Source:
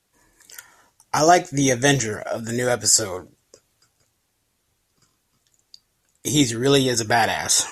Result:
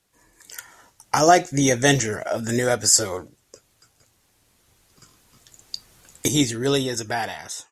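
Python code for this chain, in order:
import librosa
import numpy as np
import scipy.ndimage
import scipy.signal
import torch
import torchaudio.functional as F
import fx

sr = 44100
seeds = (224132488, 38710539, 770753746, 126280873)

y = fx.fade_out_tail(x, sr, length_s=1.64)
y = fx.recorder_agc(y, sr, target_db=-11.5, rise_db_per_s=5.0, max_gain_db=30)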